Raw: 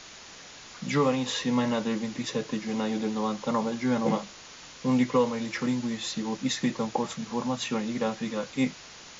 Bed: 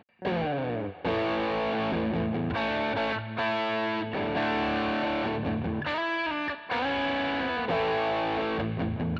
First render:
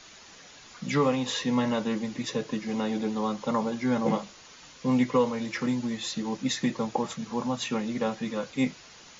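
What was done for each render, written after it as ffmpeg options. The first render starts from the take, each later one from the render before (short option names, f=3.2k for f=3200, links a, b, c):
-af "afftdn=nr=6:nf=-47"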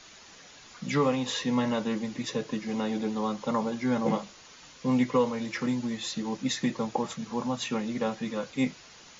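-af "volume=-1dB"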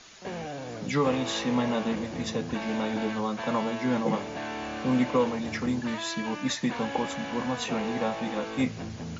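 -filter_complex "[1:a]volume=-7.5dB[a];[0:a][a]amix=inputs=2:normalize=0"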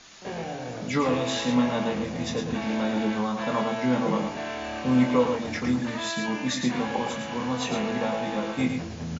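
-filter_complex "[0:a]asplit=2[a][b];[b]adelay=24,volume=-5.5dB[c];[a][c]amix=inputs=2:normalize=0,aecho=1:1:110:0.501"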